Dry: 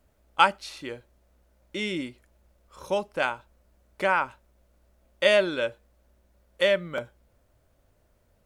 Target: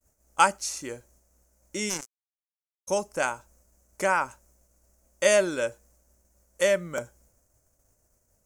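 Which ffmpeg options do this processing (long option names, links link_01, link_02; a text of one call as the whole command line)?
ffmpeg -i in.wav -filter_complex "[0:a]agate=range=-33dB:threshold=-59dB:ratio=3:detection=peak,asplit=3[link_01][link_02][link_03];[link_01]afade=type=out:start_time=1.89:duration=0.02[link_04];[link_02]acrusher=bits=3:mix=0:aa=0.5,afade=type=in:start_time=1.89:duration=0.02,afade=type=out:start_time=2.87:duration=0.02[link_05];[link_03]afade=type=in:start_time=2.87:duration=0.02[link_06];[link_04][link_05][link_06]amix=inputs=3:normalize=0,highshelf=frequency=4900:width_type=q:width=3:gain=10.5" out.wav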